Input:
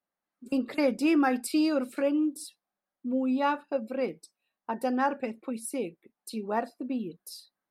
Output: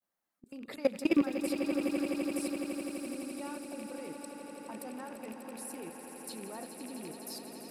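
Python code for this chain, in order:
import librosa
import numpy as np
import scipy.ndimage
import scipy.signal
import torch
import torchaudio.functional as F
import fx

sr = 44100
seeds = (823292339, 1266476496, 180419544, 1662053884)

p1 = fx.rattle_buzz(x, sr, strikes_db=-39.0, level_db=-31.0)
p2 = fx.high_shelf(p1, sr, hz=6600.0, db=7.0)
p3 = fx.level_steps(p2, sr, step_db=22)
p4 = p3 + fx.echo_swell(p3, sr, ms=84, loudest=8, wet_db=-11.0, dry=0)
y = fx.dmg_noise_colour(p4, sr, seeds[0], colour='white', level_db=-72.0, at=(1.13, 3.12), fade=0.02)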